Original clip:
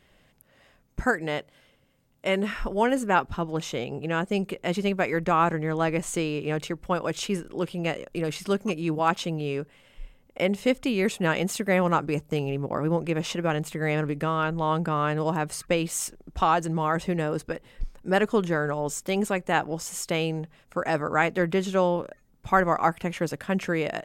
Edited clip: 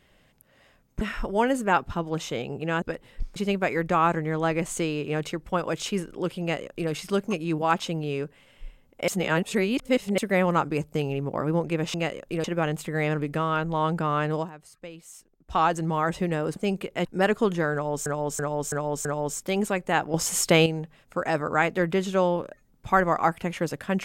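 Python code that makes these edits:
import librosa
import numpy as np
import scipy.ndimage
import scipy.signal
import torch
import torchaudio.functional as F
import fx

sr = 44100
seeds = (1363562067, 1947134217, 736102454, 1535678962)

y = fx.edit(x, sr, fx.cut(start_s=1.01, length_s=1.42),
    fx.swap(start_s=4.24, length_s=0.49, other_s=17.43, other_length_s=0.54),
    fx.duplicate(start_s=7.78, length_s=0.5, to_s=13.31),
    fx.reverse_span(start_s=10.45, length_s=1.1),
    fx.fade_down_up(start_s=15.23, length_s=1.24, db=-17.0, fade_s=0.14),
    fx.repeat(start_s=18.65, length_s=0.33, count=5),
    fx.clip_gain(start_s=19.74, length_s=0.52, db=8.0), tone=tone)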